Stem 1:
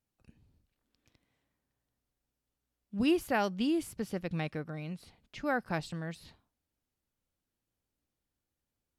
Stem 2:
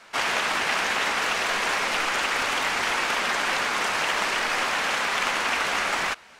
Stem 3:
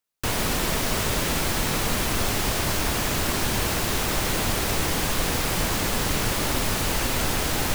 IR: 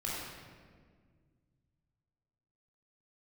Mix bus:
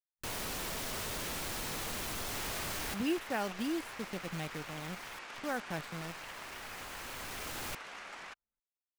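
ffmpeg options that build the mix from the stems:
-filter_complex "[0:a]acrusher=bits=7:dc=4:mix=0:aa=0.000001,volume=0.531,asplit=2[s0][s1];[1:a]acompressor=threshold=0.0355:ratio=1.5,adelay=2200,volume=0.112[s2];[2:a]lowshelf=f=320:g=-5.5,asoftclip=type=tanh:threshold=0.0335,volume=0.473,asplit=3[s3][s4][s5];[s3]atrim=end=5.19,asetpts=PTS-STARTPTS,afade=t=out:st=5.186:d=0.004:c=hsin[s6];[s4]atrim=start=5.19:end=5.82,asetpts=PTS-STARTPTS,volume=0[s7];[s5]atrim=start=5.82,asetpts=PTS-STARTPTS,afade=t=in:d=0.004:c=hsin[s8];[s6][s7][s8]concat=n=3:v=0:a=1[s9];[s1]apad=whole_len=341699[s10];[s9][s10]sidechaincompress=threshold=0.002:ratio=8:attack=37:release=1490[s11];[s0][s2][s11]amix=inputs=3:normalize=0,anlmdn=0.00158"

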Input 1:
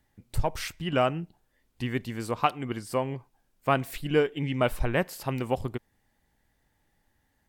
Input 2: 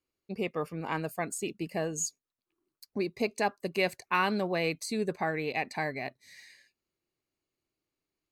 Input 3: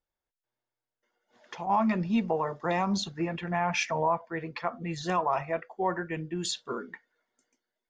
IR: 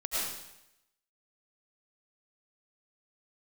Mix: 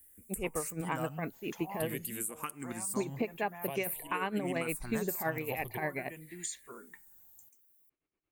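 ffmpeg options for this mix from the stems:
-filter_complex "[0:a]highshelf=f=4200:g=8.5,asplit=2[s0][s1];[s1]afreqshift=-0.49[s2];[s0][s2]amix=inputs=2:normalize=1,volume=0.668[s3];[1:a]lowpass=f=2900:w=0.5412,lowpass=f=2900:w=1.3066,tremolo=f=8.7:d=0.76,volume=1.26[s4];[2:a]aemphasis=mode=production:type=75kf,acompressor=threshold=0.0112:ratio=2,volume=0.335[s5];[s3][s5]amix=inputs=2:normalize=0,aexciter=amount=6.7:drive=7.9:freq=7500,acompressor=threshold=0.0178:ratio=6,volume=1[s6];[s4][s6]amix=inputs=2:normalize=0,alimiter=limit=0.0794:level=0:latency=1:release=168"

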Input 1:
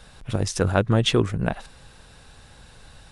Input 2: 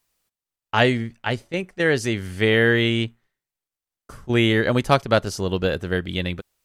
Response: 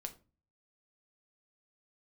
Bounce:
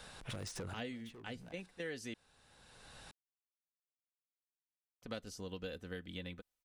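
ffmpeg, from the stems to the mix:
-filter_complex "[0:a]lowshelf=f=140:g=-11.5,acompressor=threshold=0.0447:ratio=10,asoftclip=type=hard:threshold=0.0266,volume=0.794[s0];[1:a]aecho=1:1:4:0.49,volume=0.126,asplit=3[s1][s2][s3];[s1]atrim=end=2.14,asetpts=PTS-STARTPTS,afade=t=out:st=2.136:d=0.004:c=hsin[s4];[s2]atrim=start=2.14:end=5.02,asetpts=PTS-STARTPTS,volume=0[s5];[s3]atrim=start=5.02,asetpts=PTS-STARTPTS,afade=t=in:d=0.004:c=hsin[s6];[s4][s5][s6]concat=n=3:v=0:a=1,asplit=2[s7][s8];[s8]apad=whole_len=137196[s9];[s0][s9]sidechaincompress=threshold=0.00112:ratio=4:attack=28:release=626[s10];[s10][s7]amix=inputs=2:normalize=0,acrossover=split=530|2000[s11][s12][s13];[s11]acompressor=threshold=0.00708:ratio=4[s14];[s12]acompressor=threshold=0.00251:ratio=4[s15];[s13]acompressor=threshold=0.00447:ratio=4[s16];[s14][s15][s16]amix=inputs=3:normalize=0"

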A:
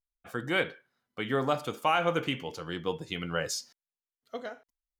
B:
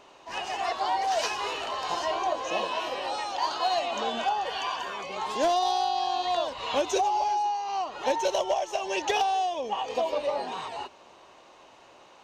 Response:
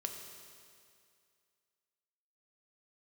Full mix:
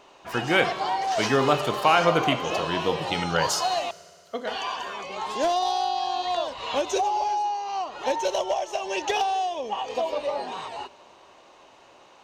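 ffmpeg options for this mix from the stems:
-filter_complex "[0:a]volume=1.41,asplit=2[s0][s1];[s1]volume=0.631[s2];[1:a]volume=0.944,asplit=3[s3][s4][s5];[s3]atrim=end=3.91,asetpts=PTS-STARTPTS,afade=t=out:st=3.906:d=0.004:c=hsin[s6];[s4]atrim=start=3.91:end=4.47,asetpts=PTS-STARTPTS,volume=0[s7];[s5]atrim=start=4.47,asetpts=PTS-STARTPTS,afade=t=in:d=0.004:c=hsin[s8];[s6][s7][s8]concat=n=3:v=0:a=1,asplit=2[s9][s10];[s10]volume=0.188[s11];[2:a]atrim=start_sample=2205[s12];[s2][s11]amix=inputs=2:normalize=0[s13];[s13][s12]afir=irnorm=-1:irlink=0[s14];[s0][s9][s14]amix=inputs=3:normalize=0"

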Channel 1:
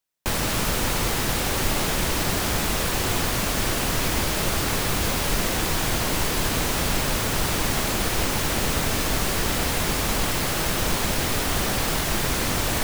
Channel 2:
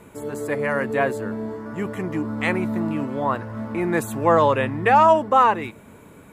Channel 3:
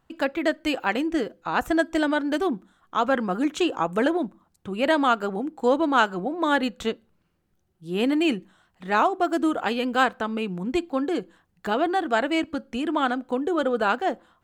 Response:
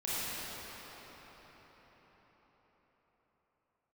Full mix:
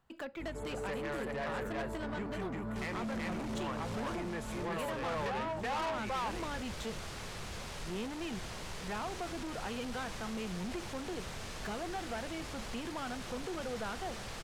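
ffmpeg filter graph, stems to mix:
-filter_complex "[0:a]adelay=2500,volume=0.133[s0];[1:a]aeval=exprs='val(0)+0.0141*(sin(2*PI*50*n/s)+sin(2*PI*2*50*n/s)/2+sin(2*PI*3*50*n/s)/3+sin(2*PI*4*50*n/s)/4+sin(2*PI*5*50*n/s)/5)':c=same,adelay=400,volume=0.531,asplit=2[s1][s2];[s2]volume=0.422[s3];[2:a]acrossover=split=220[s4][s5];[s5]acompressor=threshold=0.0316:ratio=3[s6];[s4][s6]amix=inputs=2:normalize=0,volume=0.531[s7];[s0][s1]amix=inputs=2:normalize=0,lowpass=7700,acompressor=threshold=0.0282:ratio=6,volume=1[s8];[s3]aecho=0:1:376:1[s9];[s7][s8][s9]amix=inputs=3:normalize=0,asoftclip=type=tanh:threshold=0.0237,equalizer=f=290:t=o:w=0.34:g=-8"

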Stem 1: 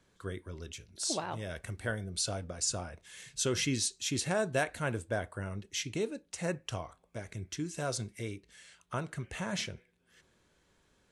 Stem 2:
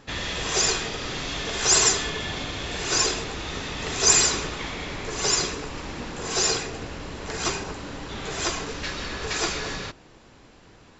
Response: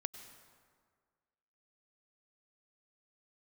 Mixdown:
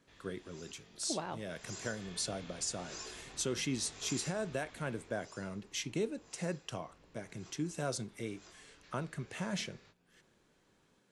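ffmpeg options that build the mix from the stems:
-filter_complex "[0:a]highpass=f=140:w=0.5412,highpass=f=140:w=1.3066,lowshelf=f=380:g=5,volume=0.708[s0];[1:a]acompressor=threshold=0.00501:ratio=1.5,flanger=delay=18.5:depth=6.6:speed=1.3,volume=0.282,afade=t=in:st=1.46:d=0.62:silence=0.266073,afade=t=out:st=4.89:d=0.29:silence=0.316228[s1];[s0][s1]amix=inputs=2:normalize=0,alimiter=level_in=1.06:limit=0.0631:level=0:latency=1:release=382,volume=0.944"

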